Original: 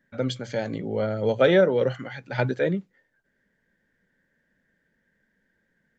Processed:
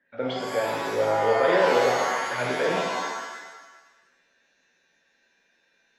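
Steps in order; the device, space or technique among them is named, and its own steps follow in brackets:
DJ mixer with the lows and highs turned down (three-way crossover with the lows and the highs turned down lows −17 dB, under 330 Hz, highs −24 dB, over 3,500 Hz; brickwall limiter −17.5 dBFS, peak gain reduction 8.5 dB)
reverb with rising layers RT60 1.2 s, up +7 semitones, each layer −2 dB, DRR −1 dB

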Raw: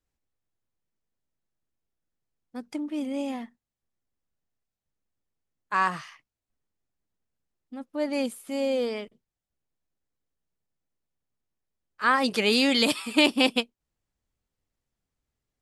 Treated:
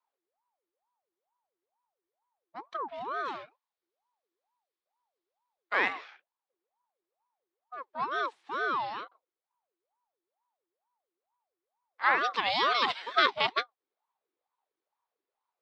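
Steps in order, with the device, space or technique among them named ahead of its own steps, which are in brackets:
0:03.25–0:05.93: high-shelf EQ 3,900 Hz +12 dB
voice changer toy (ring modulator whose carrier an LFO sweeps 660 Hz, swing 50%, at 2.2 Hz; loudspeaker in its box 480–4,100 Hz, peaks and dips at 620 Hz −5 dB, 1,100 Hz +3 dB, 2,800 Hz −4 dB)

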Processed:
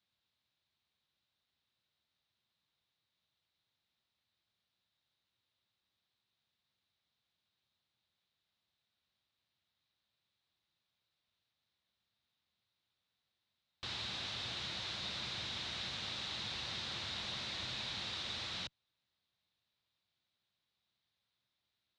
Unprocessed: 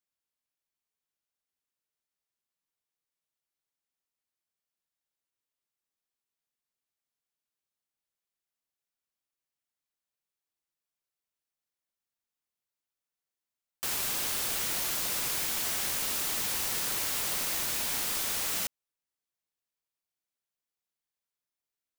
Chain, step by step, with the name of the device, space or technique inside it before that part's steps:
guitar amplifier (tube saturation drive 47 dB, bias 0.45; bass and treble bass +13 dB, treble +9 dB; loudspeaker in its box 97–3,900 Hz, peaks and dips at 160 Hz −7 dB, 270 Hz −7 dB, 430 Hz −5 dB, 3,800 Hz +9 dB)
level +8 dB

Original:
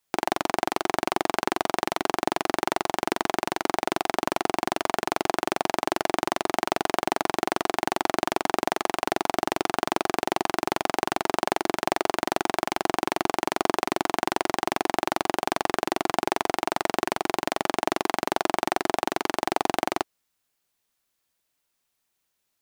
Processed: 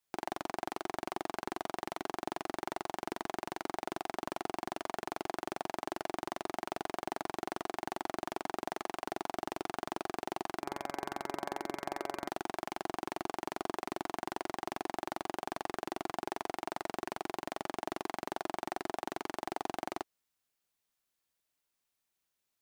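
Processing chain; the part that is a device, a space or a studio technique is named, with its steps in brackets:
0:10.59–0:12.29: hum removal 141 Hz, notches 17
soft clipper into limiter (soft clipping −9 dBFS, distortion −16 dB; brickwall limiter −13.5 dBFS, peak gain reduction 4 dB)
level −7.5 dB

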